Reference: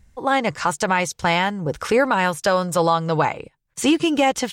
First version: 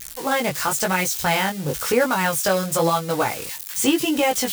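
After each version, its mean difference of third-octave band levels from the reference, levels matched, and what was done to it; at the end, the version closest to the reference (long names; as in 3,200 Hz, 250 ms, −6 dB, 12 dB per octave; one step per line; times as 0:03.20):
8.0 dB: spike at every zero crossing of −17.5 dBFS
dynamic equaliser 1,000 Hz, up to −5 dB, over −35 dBFS, Q 6.5
chorus effect 0.97 Hz, delay 16 ms, depth 5.3 ms
level +1.5 dB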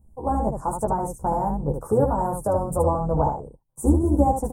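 12.5 dB: sub-octave generator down 2 octaves, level 0 dB
Chebyshev band-stop filter 890–9,200 Hz, order 3
on a send: ambience of single reflections 14 ms −3.5 dB, 75 ms −5 dB
on the sum: level −4 dB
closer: first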